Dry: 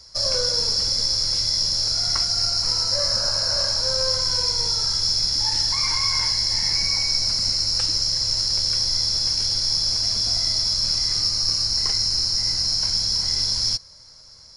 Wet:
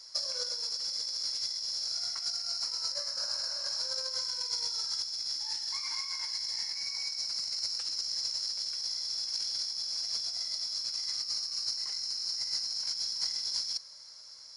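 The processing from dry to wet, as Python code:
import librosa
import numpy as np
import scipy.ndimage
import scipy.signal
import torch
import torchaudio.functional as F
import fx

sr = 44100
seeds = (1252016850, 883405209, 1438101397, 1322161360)

y = fx.highpass(x, sr, hz=1100.0, slope=6)
y = fx.over_compress(y, sr, threshold_db=-26.0, ratio=-0.5)
y = y * librosa.db_to_amplitude(-7.5)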